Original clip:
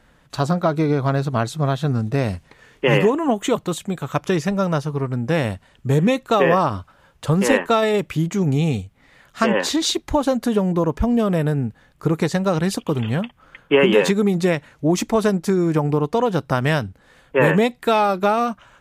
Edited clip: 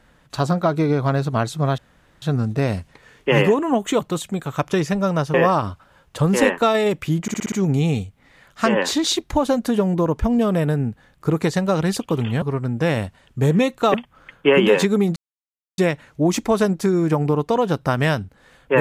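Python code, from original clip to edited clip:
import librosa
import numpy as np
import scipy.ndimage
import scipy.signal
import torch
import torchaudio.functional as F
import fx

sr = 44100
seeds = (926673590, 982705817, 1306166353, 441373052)

y = fx.edit(x, sr, fx.insert_room_tone(at_s=1.78, length_s=0.44),
    fx.move(start_s=4.9, length_s=1.52, to_s=13.2),
    fx.stutter(start_s=8.3, slice_s=0.06, count=6),
    fx.insert_silence(at_s=14.42, length_s=0.62), tone=tone)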